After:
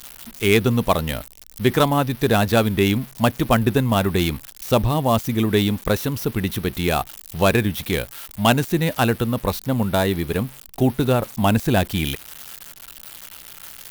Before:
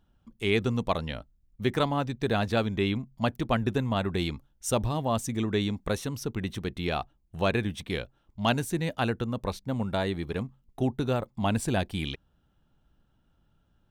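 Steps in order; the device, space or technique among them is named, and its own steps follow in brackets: budget class-D amplifier (dead-time distortion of 0.071 ms; zero-crossing glitches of -28.5 dBFS); trim +9 dB

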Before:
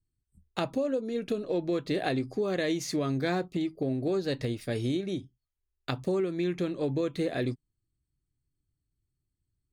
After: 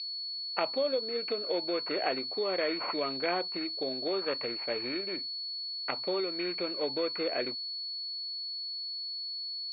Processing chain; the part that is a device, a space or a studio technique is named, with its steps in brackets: toy sound module (decimation joined by straight lines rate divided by 8×; class-D stage that switches slowly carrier 4.4 kHz; cabinet simulation 730–3900 Hz, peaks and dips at 770 Hz -4 dB, 1.2 kHz -3 dB, 1.7 kHz -7 dB, 2.4 kHz +10 dB); trim +7.5 dB

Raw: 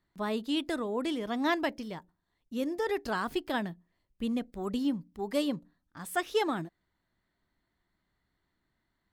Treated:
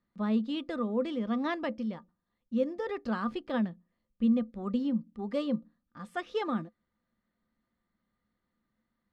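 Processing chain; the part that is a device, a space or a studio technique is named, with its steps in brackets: inside a cardboard box (low-pass 4.3 kHz 12 dB/octave; small resonant body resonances 220/510/1200 Hz, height 15 dB, ringing for 95 ms); trim -5.5 dB

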